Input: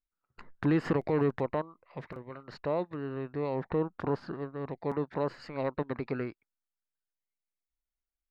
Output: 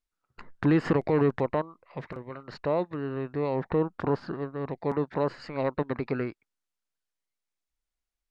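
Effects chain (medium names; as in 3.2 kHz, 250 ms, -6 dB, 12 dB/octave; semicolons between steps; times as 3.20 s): low-pass 9.4 kHz; trim +4 dB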